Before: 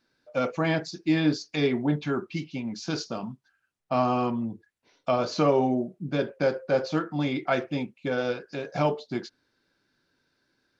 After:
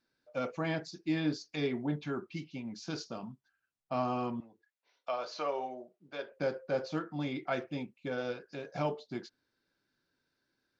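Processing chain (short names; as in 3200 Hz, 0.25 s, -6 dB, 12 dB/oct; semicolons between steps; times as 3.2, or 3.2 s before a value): 4.4–6.32 three-band isolator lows -23 dB, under 460 Hz, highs -13 dB, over 6600 Hz; gain -8.5 dB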